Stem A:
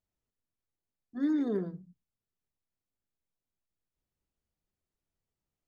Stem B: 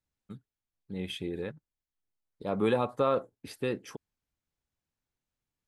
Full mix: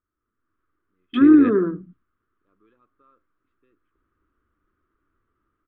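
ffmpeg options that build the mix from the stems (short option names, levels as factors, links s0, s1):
-filter_complex "[0:a]acompressor=threshold=0.0282:ratio=6,highshelf=f=2000:t=q:w=1.5:g=-8,volume=1.33,asplit=2[s0][s1];[1:a]volume=0.531[s2];[s1]apad=whole_len=250344[s3];[s2][s3]sidechaingate=range=0.00562:threshold=0.00141:ratio=16:detection=peak[s4];[s0][s4]amix=inputs=2:normalize=0,firequalizer=gain_entry='entry(100,0);entry(150,-8);entry(310,9);entry(510,-4);entry(800,-13);entry(1200,13);entry(1800,3);entry(3300,-1);entry(5200,-25)':delay=0.05:min_phase=1,dynaudnorm=f=160:g=5:m=4.22"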